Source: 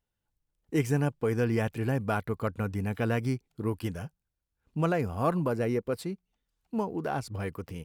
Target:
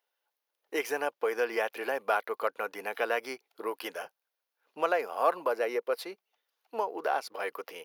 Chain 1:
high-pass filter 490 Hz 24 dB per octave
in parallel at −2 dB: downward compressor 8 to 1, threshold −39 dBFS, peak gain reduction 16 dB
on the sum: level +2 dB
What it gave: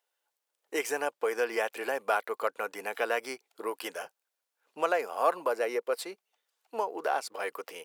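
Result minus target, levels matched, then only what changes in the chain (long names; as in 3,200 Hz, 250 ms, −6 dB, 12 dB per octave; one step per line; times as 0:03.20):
8,000 Hz band +5.5 dB
add after high-pass filter: parametric band 7,900 Hz −15 dB 0.41 octaves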